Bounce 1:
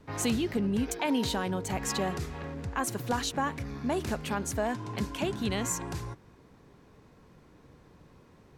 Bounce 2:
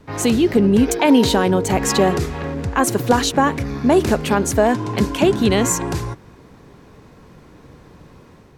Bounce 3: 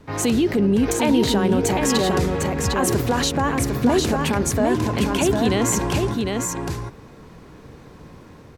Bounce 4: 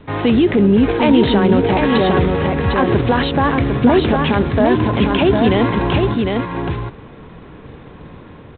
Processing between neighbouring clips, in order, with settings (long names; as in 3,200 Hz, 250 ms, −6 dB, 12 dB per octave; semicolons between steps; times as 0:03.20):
dynamic equaliser 390 Hz, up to +6 dB, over −42 dBFS, Q 0.95; automatic gain control gain up to 4 dB; level +8 dB
brickwall limiter −11.5 dBFS, peak gain reduction 9 dB; single-tap delay 754 ms −4 dB
level +6 dB; G.726 24 kbit/s 8,000 Hz